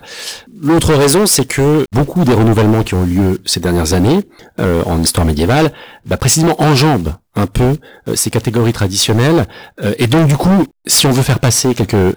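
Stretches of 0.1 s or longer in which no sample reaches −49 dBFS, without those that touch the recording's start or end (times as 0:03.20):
0:07.20–0:07.34
0:10.71–0:10.85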